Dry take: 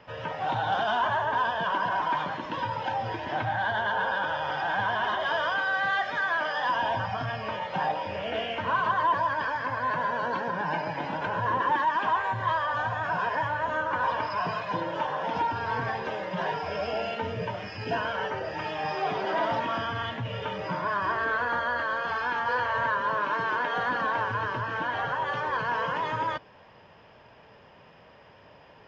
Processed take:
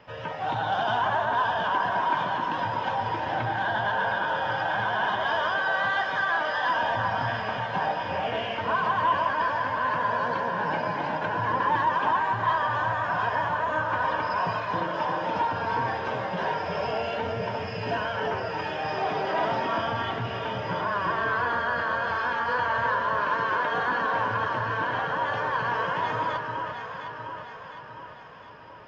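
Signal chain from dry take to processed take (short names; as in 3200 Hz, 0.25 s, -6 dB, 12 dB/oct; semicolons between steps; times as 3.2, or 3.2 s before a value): echo with dull and thin repeats by turns 0.354 s, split 1500 Hz, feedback 73%, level -4 dB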